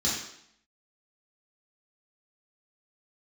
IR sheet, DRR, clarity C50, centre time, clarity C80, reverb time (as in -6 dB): -8.0 dB, 2.0 dB, 52 ms, 5.5 dB, 0.70 s